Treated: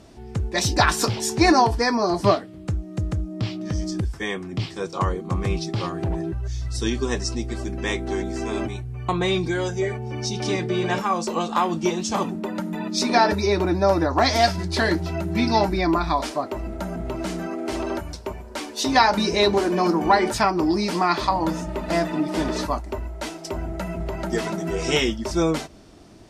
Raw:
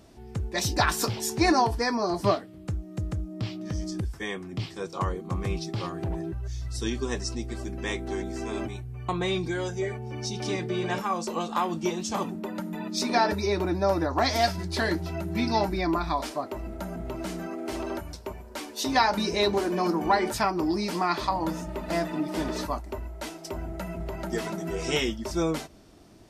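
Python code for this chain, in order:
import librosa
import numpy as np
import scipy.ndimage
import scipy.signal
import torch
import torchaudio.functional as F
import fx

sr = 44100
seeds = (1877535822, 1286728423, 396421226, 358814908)

y = scipy.signal.sosfilt(scipy.signal.butter(2, 10000.0, 'lowpass', fs=sr, output='sos'), x)
y = y * librosa.db_to_amplitude(5.5)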